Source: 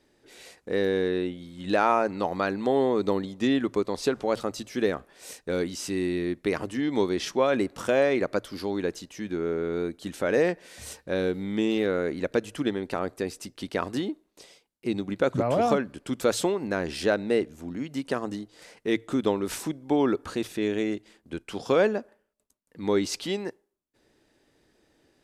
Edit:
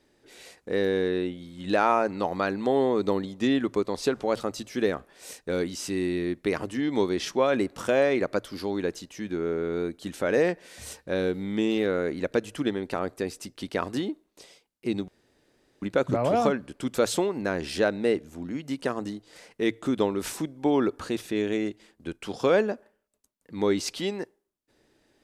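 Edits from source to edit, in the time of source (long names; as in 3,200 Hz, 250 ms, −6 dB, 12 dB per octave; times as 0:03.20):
0:15.08: splice in room tone 0.74 s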